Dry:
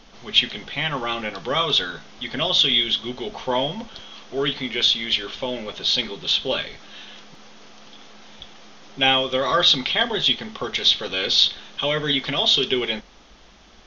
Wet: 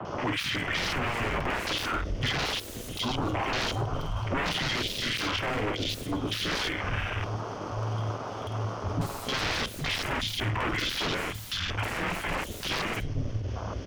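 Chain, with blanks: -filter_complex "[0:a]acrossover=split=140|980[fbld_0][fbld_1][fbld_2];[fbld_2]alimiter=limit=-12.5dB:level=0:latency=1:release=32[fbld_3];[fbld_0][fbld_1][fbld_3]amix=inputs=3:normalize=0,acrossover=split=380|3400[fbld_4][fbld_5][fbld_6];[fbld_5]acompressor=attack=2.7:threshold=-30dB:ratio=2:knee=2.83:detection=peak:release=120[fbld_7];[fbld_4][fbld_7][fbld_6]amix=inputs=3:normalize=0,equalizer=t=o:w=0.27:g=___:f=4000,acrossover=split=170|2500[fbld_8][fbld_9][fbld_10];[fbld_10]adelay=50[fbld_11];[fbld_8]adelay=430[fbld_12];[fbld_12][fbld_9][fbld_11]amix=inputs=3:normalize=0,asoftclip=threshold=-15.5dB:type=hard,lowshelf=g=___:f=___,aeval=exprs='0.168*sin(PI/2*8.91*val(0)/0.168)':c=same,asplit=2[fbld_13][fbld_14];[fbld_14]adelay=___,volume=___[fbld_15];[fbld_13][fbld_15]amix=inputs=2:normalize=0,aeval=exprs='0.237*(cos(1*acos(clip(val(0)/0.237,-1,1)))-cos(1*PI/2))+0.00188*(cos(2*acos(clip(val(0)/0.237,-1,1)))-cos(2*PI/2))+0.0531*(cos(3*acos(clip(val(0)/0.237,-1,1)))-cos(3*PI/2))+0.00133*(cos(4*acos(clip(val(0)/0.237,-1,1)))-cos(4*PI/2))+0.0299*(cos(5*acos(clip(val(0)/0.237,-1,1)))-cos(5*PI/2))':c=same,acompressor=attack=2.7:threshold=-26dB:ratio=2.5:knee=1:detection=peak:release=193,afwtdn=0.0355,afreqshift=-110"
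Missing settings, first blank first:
-11.5, -5.5, 490, 50, -9dB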